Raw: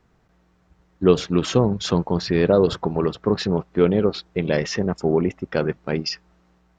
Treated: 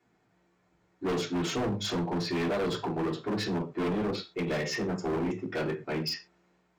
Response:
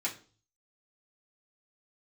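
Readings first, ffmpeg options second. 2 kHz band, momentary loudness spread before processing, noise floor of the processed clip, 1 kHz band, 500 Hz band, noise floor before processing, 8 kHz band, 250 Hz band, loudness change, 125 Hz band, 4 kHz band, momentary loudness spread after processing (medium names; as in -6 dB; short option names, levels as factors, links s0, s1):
-5.0 dB, 7 LU, -71 dBFS, -6.0 dB, -12.0 dB, -62 dBFS, no reading, -9.0 dB, -10.0 dB, -11.0 dB, -6.0 dB, 3 LU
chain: -filter_complex "[1:a]atrim=start_sample=2205,atrim=end_sample=6174[s0];[0:a][s0]afir=irnorm=-1:irlink=0,asoftclip=type=hard:threshold=0.119,volume=0.376"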